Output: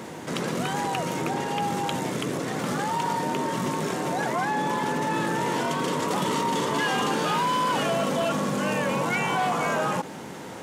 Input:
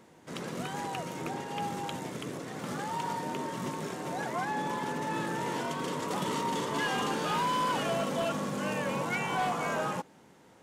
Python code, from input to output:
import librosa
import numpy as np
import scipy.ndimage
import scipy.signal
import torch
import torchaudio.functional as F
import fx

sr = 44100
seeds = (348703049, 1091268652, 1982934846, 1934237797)

y = scipy.signal.sosfilt(scipy.signal.butter(2, 79.0, 'highpass', fs=sr, output='sos'), x)
y = fx.env_flatten(y, sr, amount_pct=50)
y = F.gain(torch.from_numpy(y), 4.5).numpy()